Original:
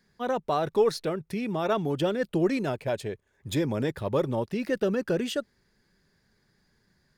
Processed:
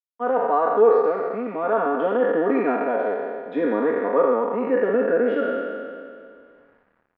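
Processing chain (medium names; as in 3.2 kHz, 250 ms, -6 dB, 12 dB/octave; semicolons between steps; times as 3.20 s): spectral sustain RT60 2.03 s; high-pass 270 Hz 24 dB/octave; comb 4.2 ms, depth 79%; gain riding 2 s; bit crusher 9-bit; low-pass 1.7 kHz 24 dB/octave; trim +1 dB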